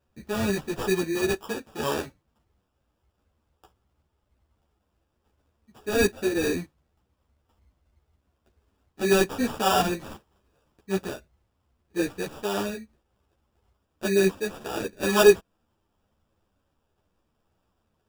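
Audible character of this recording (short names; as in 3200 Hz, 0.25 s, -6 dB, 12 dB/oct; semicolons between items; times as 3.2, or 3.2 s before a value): aliases and images of a low sample rate 2100 Hz, jitter 0%; a shimmering, thickened sound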